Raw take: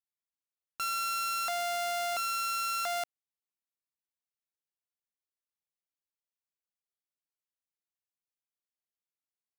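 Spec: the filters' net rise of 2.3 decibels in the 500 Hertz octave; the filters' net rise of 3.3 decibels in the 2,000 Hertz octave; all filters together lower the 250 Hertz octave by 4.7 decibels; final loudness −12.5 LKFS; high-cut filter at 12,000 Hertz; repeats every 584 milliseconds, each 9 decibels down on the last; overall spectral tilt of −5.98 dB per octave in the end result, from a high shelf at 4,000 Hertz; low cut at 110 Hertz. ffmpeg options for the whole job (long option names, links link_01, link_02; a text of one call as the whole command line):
ffmpeg -i in.wav -af "highpass=110,lowpass=12000,equalizer=frequency=250:width_type=o:gain=-8.5,equalizer=frequency=500:width_type=o:gain=5,equalizer=frequency=2000:width_type=o:gain=6.5,highshelf=frequency=4000:gain=-4.5,aecho=1:1:584|1168|1752|2336:0.355|0.124|0.0435|0.0152,volume=17.5dB" out.wav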